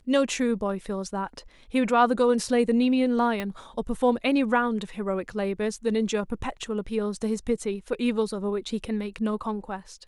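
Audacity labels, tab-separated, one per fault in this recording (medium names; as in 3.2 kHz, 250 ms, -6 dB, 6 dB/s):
3.400000	3.400000	pop -16 dBFS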